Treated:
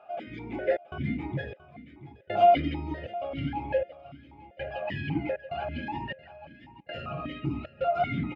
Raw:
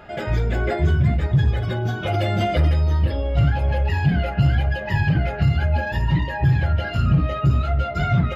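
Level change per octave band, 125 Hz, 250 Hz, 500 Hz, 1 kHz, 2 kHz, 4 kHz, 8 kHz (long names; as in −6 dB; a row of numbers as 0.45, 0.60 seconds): −20.0 dB, −9.0 dB, −1.5 dB, −1.0 dB, −11.0 dB, −10.0 dB, can't be measured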